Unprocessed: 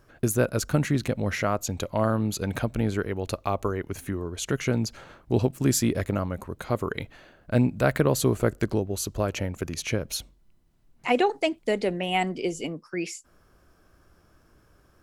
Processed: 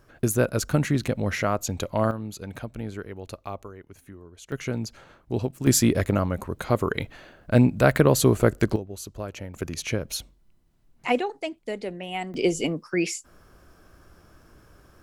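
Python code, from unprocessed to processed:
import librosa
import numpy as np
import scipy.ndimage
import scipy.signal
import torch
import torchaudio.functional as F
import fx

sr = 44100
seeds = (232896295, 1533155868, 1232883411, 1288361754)

y = fx.gain(x, sr, db=fx.steps((0.0, 1.0), (2.11, -8.0), (3.63, -14.0), (4.52, -4.0), (5.67, 4.0), (8.76, -7.5), (9.54, 0.0), (11.19, -6.5), (12.34, 6.0)))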